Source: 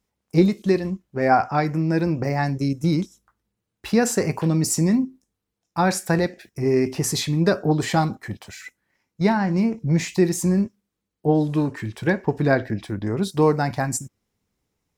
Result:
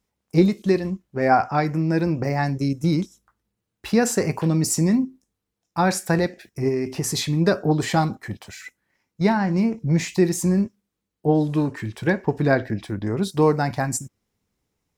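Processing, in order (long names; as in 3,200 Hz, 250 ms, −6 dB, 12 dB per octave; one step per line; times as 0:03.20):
0:06.68–0:07.17: downward compressor, threshold −20 dBFS, peak gain reduction 6 dB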